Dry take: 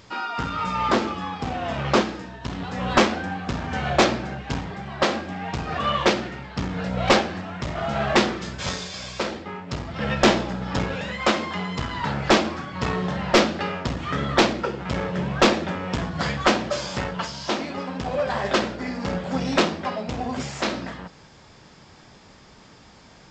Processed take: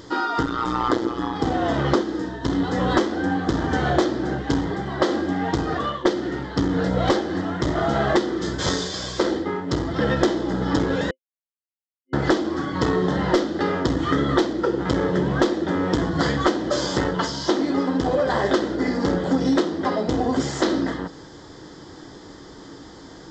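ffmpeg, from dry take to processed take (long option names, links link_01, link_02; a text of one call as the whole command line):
ffmpeg -i in.wav -filter_complex "[0:a]asplit=3[link_01][link_02][link_03];[link_01]afade=type=out:start_time=0.42:duration=0.02[link_04];[link_02]tremolo=f=120:d=1,afade=type=in:start_time=0.42:duration=0.02,afade=type=out:start_time=1.34:duration=0.02[link_05];[link_03]afade=type=in:start_time=1.34:duration=0.02[link_06];[link_04][link_05][link_06]amix=inputs=3:normalize=0,asplit=4[link_07][link_08][link_09][link_10];[link_07]atrim=end=6.05,asetpts=PTS-STARTPTS,afade=type=out:start_time=5.55:duration=0.5:silence=0.1[link_11];[link_08]atrim=start=6.05:end=11.11,asetpts=PTS-STARTPTS,afade=type=in:duration=0.004:curve=hsin:silence=0.1,afade=type=out:start_time=5.056:duration=0.004:curve=hsin[link_12];[link_09]atrim=start=11.11:end=12.13,asetpts=PTS-STARTPTS,volume=0[link_13];[link_10]atrim=start=12.13,asetpts=PTS-STARTPTS,afade=type=in:duration=0.004:curve=hsin[link_14];[link_11][link_12][link_13][link_14]concat=n=4:v=0:a=1,superequalizer=6b=3.55:7b=2:12b=0.251,acompressor=threshold=-21dB:ratio=16,volume=5dB" out.wav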